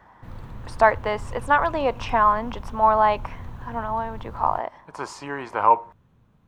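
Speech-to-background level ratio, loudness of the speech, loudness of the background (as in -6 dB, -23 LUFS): 17.5 dB, -22.5 LUFS, -40.0 LUFS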